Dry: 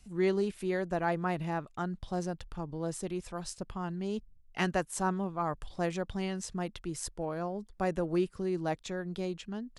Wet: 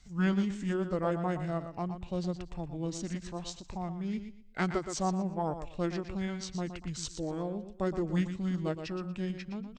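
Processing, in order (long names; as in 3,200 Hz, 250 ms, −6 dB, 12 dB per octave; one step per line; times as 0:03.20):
repeating echo 119 ms, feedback 26%, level −9.5 dB
formants moved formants −5 semitones
every ending faded ahead of time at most 260 dB per second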